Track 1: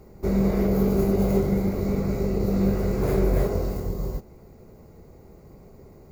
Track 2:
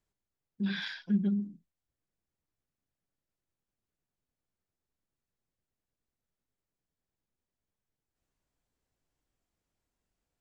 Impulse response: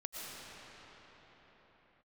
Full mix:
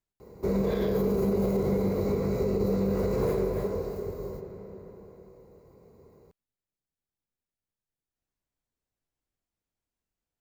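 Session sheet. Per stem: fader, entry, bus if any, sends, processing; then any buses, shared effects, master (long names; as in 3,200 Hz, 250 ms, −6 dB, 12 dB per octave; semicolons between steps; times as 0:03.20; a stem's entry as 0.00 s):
0:03.25 −4.5 dB → 0:03.51 −12 dB, 0.20 s, send −8 dB, high-pass filter 61 Hz; hollow resonant body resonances 470/1,000/4,000 Hz, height 10 dB, ringing for 35 ms
−6.0 dB, 0.00 s, no send, no processing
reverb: on, pre-delay 75 ms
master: brickwall limiter −18.5 dBFS, peak gain reduction 8.5 dB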